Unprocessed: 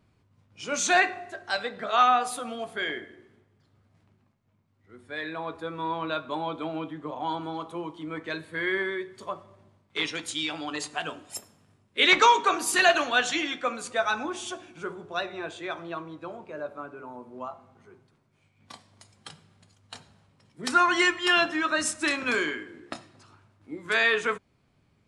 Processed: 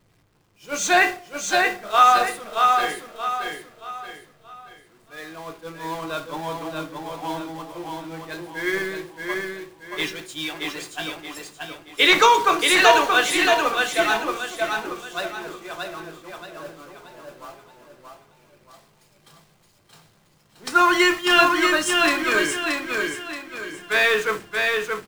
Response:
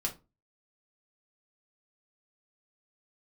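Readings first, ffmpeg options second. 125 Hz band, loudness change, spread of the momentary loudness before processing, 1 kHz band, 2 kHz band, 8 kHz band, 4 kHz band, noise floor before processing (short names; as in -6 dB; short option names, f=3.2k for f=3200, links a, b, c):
+3.0 dB, +6.0 dB, 19 LU, +6.0 dB, +5.5 dB, +4.5 dB, +5.5 dB, -68 dBFS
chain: -filter_complex "[0:a]aeval=exprs='val(0)+0.5*0.0316*sgn(val(0))':c=same,agate=range=-33dB:threshold=-21dB:ratio=3:detection=peak,aecho=1:1:627|1254|1881|2508|3135:0.668|0.254|0.0965|0.0367|0.0139,asplit=2[a][b];[1:a]atrim=start_sample=2205[c];[b][c]afir=irnorm=-1:irlink=0,volume=-5.5dB[d];[a][d]amix=inputs=2:normalize=0"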